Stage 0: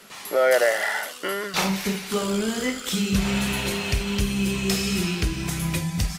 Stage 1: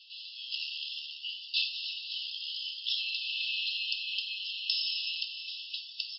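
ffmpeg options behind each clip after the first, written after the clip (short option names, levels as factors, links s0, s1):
-af "afftfilt=real='re*between(b*sr/4096,2600,5400)':imag='im*between(b*sr/4096,2600,5400)':win_size=4096:overlap=0.75"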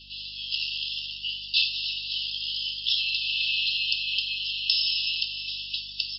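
-af "aeval=exprs='val(0)+0.000794*(sin(2*PI*50*n/s)+sin(2*PI*2*50*n/s)/2+sin(2*PI*3*50*n/s)/3+sin(2*PI*4*50*n/s)/4+sin(2*PI*5*50*n/s)/5)':c=same,volume=2.24"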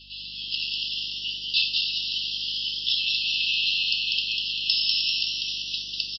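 -filter_complex "[0:a]asplit=7[s0][s1][s2][s3][s4][s5][s6];[s1]adelay=196,afreqshift=120,volume=0.631[s7];[s2]adelay=392,afreqshift=240,volume=0.316[s8];[s3]adelay=588,afreqshift=360,volume=0.158[s9];[s4]adelay=784,afreqshift=480,volume=0.0785[s10];[s5]adelay=980,afreqshift=600,volume=0.0394[s11];[s6]adelay=1176,afreqshift=720,volume=0.0197[s12];[s0][s7][s8][s9][s10][s11][s12]amix=inputs=7:normalize=0"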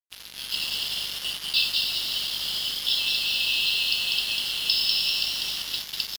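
-af "acrusher=bits=4:mix=0:aa=0.5"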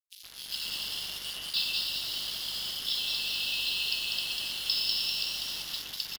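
-filter_complex "[0:a]acrossover=split=2800[s0][s1];[s0]adelay=120[s2];[s2][s1]amix=inputs=2:normalize=0,volume=0.596"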